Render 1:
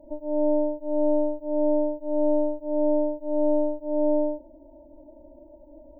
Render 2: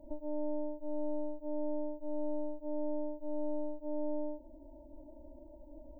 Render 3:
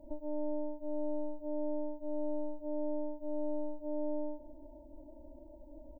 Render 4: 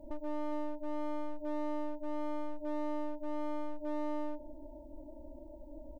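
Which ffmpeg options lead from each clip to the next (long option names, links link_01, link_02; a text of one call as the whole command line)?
ffmpeg -i in.wav -af "equalizer=frequency=530:width_type=o:width=2.2:gain=-8,acompressor=threshold=-37dB:ratio=2.5,volume=1dB" out.wav
ffmpeg -i in.wav -af "aecho=1:1:411:0.106" out.wav
ffmpeg -i in.wav -af "asoftclip=type=hard:threshold=-36.5dB,volume=3dB" out.wav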